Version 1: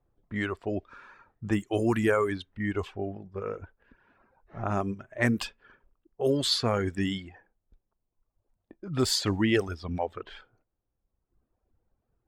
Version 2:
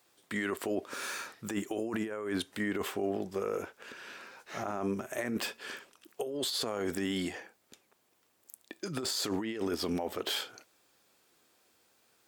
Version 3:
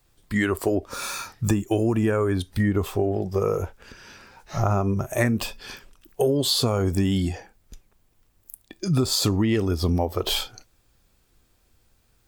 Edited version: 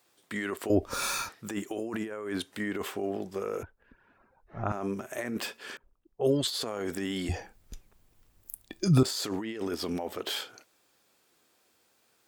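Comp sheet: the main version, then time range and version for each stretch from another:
2
0:00.70–0:01.29: punch in from 3
0:03.63–0:04.72: punch in from 1
0:05.77–0:06.47: punch in from 1
0:07.29–0:09.03: punch in from 3

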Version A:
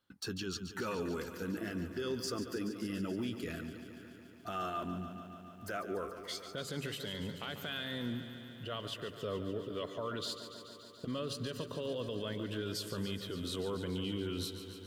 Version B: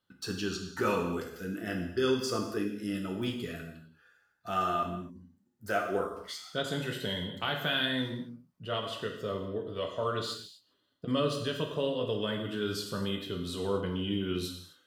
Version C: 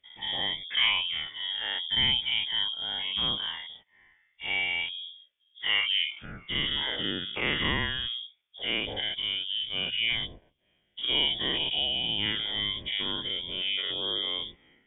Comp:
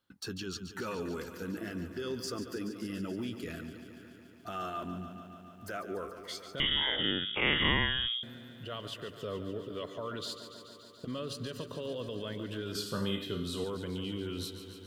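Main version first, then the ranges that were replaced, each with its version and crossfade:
A
0:06.60–0:08.23: punch in from C
0:12.75–0:13.64: punch in from B

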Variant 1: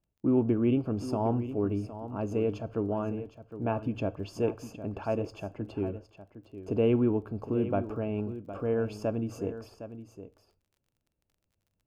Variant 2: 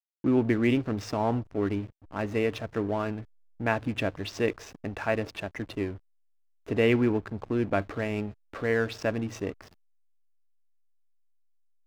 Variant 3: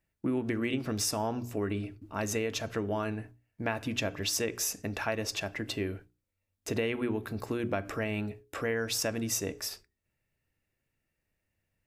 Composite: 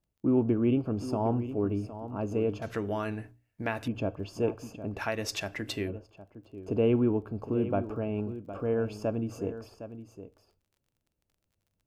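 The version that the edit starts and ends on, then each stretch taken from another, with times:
1
0:02.62–0:03.88: punch in from 3
0:04.99–0:05.88: punch in from 3, crossfade 0.06 s
not used: 2

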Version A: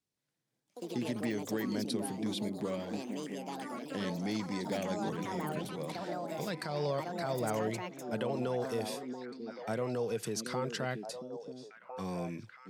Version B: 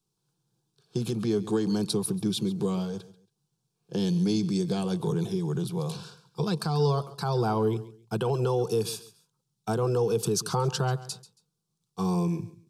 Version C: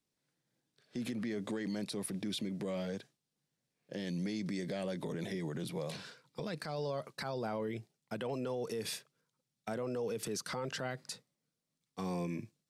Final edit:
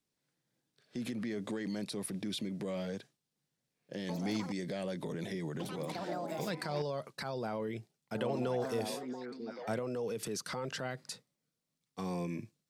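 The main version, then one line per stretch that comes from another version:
C
0:04.09–0:04.52: punch in from A
0:05.60–0:06.82: punch in from A
0:08.15–0:09.79: punch in from A
not used: B

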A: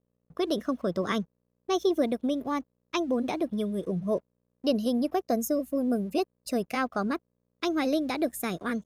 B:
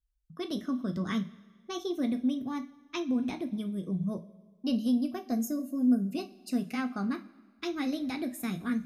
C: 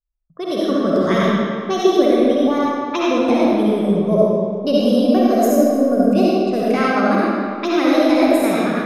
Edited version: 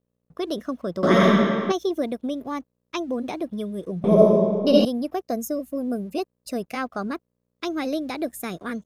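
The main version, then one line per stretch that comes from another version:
A
0:01.03–0:01.72: punch in from C
0:04.04–0:04.85: punch in from C
not used: B

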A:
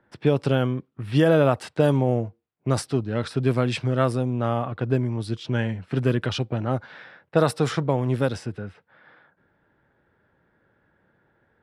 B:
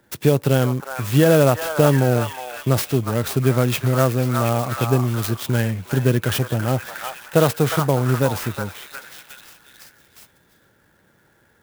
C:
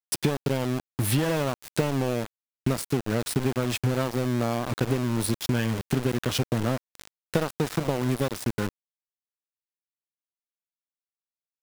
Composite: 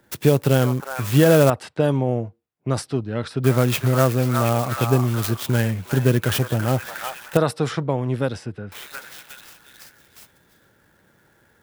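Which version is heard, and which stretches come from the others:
B
0:01.50–0:03.44: punch in from A
0:07.37–0:08.72: punch in from A
not used: C

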